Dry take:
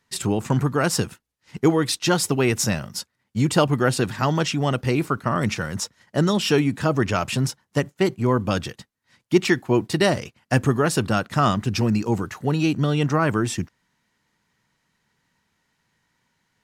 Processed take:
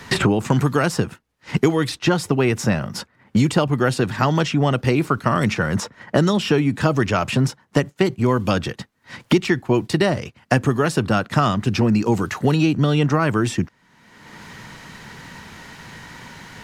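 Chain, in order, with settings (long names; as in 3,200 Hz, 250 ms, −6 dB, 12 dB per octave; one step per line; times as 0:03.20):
high-shelf EQ 5,400 Hz −7.5 dB
multiband upward and downward compressor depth 100%
level +2 dB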